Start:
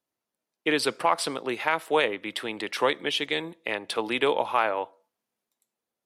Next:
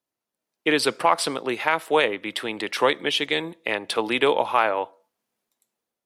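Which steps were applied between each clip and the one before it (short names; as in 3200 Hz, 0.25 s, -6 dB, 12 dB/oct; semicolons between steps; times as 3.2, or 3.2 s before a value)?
AGC gain up to 5.5 dB; gain -1 dB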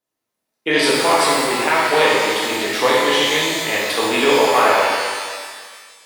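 shimmer reverb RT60 1.7 s, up +12 st, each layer -8 dB, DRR -7 dB; gain -1 dB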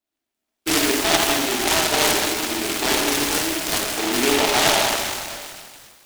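fixed phaser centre 740 Hz, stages 8; noise-modulated delay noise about 2300 Hz, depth 0.2 ms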